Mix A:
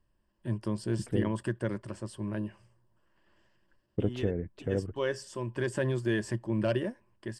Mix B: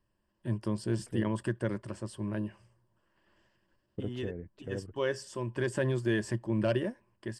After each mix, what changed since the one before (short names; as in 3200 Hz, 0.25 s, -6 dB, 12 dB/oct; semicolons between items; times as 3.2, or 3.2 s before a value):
second voice -8.0 dB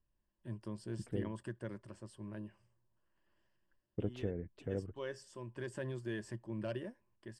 first voice -11.5 dB